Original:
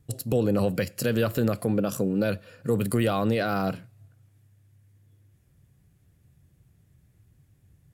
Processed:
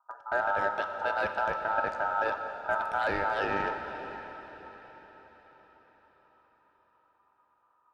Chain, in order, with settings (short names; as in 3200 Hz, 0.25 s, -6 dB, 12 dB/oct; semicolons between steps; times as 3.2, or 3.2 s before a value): Wiener smoothing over 41 samples; low-pass opened by the level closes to 480 Hz, open at -21 dBFS; HPF 180 Hz 12 dB/oct; high shelf 3600 Hz +7.5 dB; notch 1100 Hz, Q 12; ring modulator 1100 Hz; in parallel at -10 dB: hard clip -27 dBFS, distortion -8 dB; on the sum: tape spacing loss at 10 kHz 23 dB; on a send: diffused feedback echo 0.571 s, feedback 48%, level -14 dB; on the sum: plate-style reverb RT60 3.2 s, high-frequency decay 1×, DRR 6.5 dB